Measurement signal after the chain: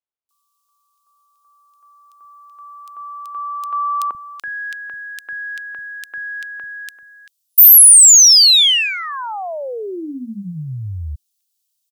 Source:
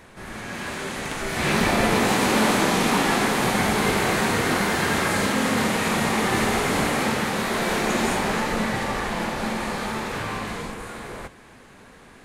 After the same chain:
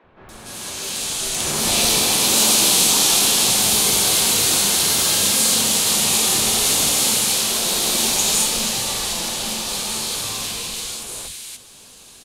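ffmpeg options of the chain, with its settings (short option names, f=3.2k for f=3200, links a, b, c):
-filter_complex "[0:a]acrossover=split=220|1800[a][b][c];[a]adelay=40[d];[c]adelay=290[e];[d][b][e]amix=inputs=3:normalize=0,aexciter=amount=5.8:drive=7.3:freq=2.8k,volume=-3.5dB"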